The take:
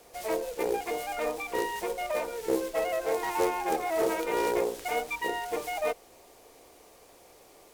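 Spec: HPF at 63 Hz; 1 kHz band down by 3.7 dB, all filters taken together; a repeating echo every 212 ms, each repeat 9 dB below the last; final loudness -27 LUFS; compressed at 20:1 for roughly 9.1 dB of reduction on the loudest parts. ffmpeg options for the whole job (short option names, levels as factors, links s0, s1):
-af "highpass=63,equalizer=f=1000:t=o:g=-5,acompressor=threshold=0.0251:ratio=20,aecho=1:1:212|424|636|848:0.355|0.124|0.0435|0.0152,volume=2.99"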